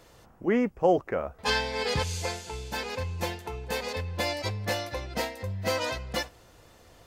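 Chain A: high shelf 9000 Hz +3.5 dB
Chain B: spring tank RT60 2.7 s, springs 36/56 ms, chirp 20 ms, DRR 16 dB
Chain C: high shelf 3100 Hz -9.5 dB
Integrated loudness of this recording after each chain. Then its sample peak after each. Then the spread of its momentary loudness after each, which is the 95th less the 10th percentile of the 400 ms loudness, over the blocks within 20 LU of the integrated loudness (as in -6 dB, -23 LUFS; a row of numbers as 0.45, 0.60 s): -30.0, -30.0, -31.0 LUFS; -10.0, -10.0, -10.5 dBFS; 9, 9, 10 LU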